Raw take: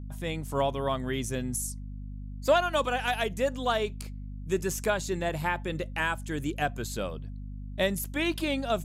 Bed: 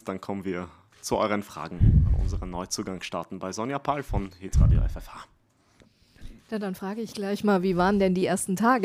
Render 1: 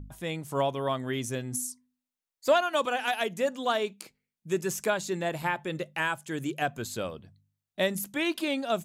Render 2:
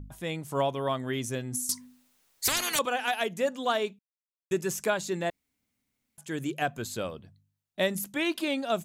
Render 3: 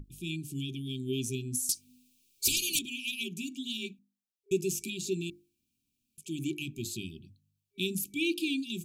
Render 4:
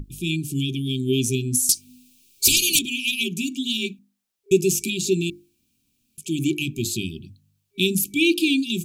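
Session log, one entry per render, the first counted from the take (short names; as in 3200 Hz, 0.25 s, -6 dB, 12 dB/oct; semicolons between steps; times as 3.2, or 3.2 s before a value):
de-hum 50 Hz, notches 5
1.69–2.79 spectral compressor 10:1; 3.99–4.51 mute; 5.3–6.18 room tone
notches 50/100/150/200/250/300/350 Hz; FFT band-reject 400–2300 Hz
gain +11.5 dB; limiter -3 dBFS, peak gain reduction 1.5 dB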